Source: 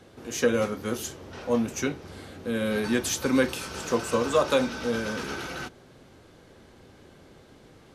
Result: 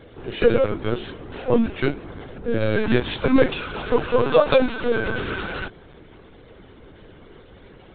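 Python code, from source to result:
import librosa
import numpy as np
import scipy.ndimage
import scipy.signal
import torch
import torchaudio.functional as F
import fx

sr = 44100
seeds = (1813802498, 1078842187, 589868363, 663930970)

y = fx.spec_quant(x, sr, step_db=15)
y = fx.high_shelf(y, sr, hz=2900.0, db=-12.0, at=(2.04, 2.59), fade=0.02)
y = fx.lpc_vocoder(y, sr, seeds[0], excitation='pitch_kept', order=16)
y = y * 10.0 ** (7.0 / 20.0)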